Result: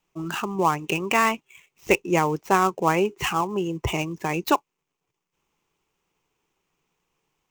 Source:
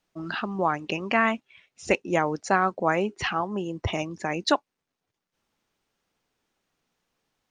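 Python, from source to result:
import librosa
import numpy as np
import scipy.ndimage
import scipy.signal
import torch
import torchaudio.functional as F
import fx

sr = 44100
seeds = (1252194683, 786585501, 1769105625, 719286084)

y = fx.dead_time(x, sr, dead_ms=0.061)
y = fx.ripple_eq(y, sr, per_octave=0.73, db=8)
y = F.gain(torch.from_numpy(y), 2.0).numpy()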